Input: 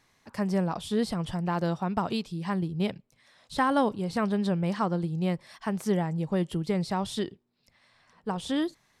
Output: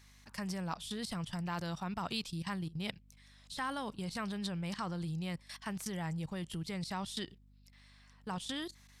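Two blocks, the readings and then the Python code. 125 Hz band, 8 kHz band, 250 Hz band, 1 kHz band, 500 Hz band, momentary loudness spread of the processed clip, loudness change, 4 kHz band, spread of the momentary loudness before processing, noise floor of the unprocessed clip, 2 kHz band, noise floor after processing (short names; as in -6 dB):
-9.0 dB, -1.5 dB, -11.5 dB, -10.5 dB, -15.0 dB, 5 LU, -10.0 dB, -2.5 dB, 7 LU, -68 dBFS, -6.0 dB, -62 dBFS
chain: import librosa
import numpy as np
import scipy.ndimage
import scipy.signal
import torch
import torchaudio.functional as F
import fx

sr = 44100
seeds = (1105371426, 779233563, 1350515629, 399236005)

y = fx.level_steps(x, sr, step_db=17)
y = fx.tone_stack(y, sr, knobs='5-5-5')
y = fx.add_hum(y, sr, base_hz=50, snr_db=22)
y = y * librosa.db_to_amplitude(13.0)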